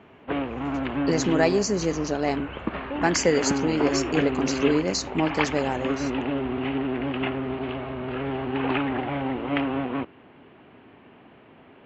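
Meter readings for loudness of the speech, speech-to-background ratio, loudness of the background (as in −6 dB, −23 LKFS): −25.5 LKFS, 3.0 dB, −28.5 LKFS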